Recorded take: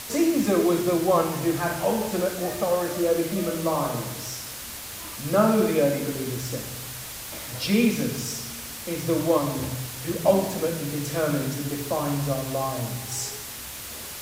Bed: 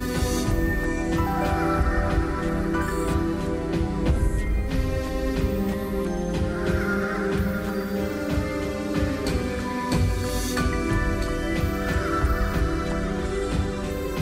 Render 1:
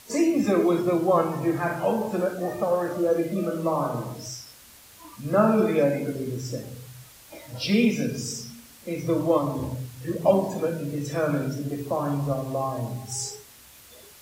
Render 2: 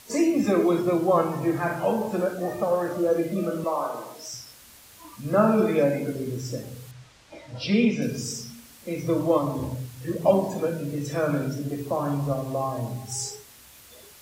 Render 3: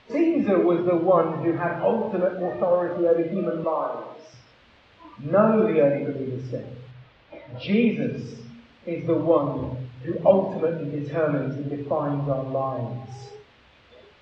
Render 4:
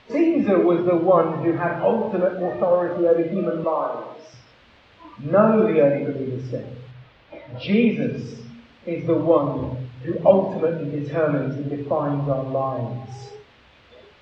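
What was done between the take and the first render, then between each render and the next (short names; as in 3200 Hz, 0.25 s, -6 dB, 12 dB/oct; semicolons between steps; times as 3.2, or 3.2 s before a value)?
noise print and reduce 13 dB
3.64–4.34 HPF 460 Hz; 6.91–8.02 air absorption 96 m
LPF 3400 Hz 24 dB/oct; bell 530 Hz +3.5 dB 0.77 oct
gain +2.5 dB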